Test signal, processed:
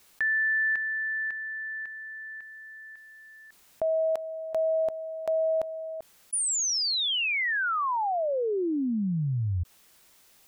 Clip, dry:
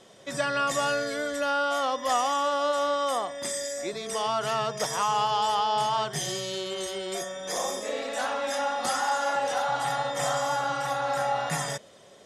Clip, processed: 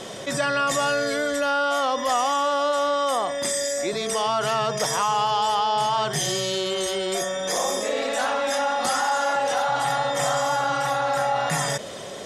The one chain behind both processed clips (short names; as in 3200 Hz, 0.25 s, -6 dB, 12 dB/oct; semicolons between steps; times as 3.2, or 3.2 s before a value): fast leveller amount 50%; gain +2 dB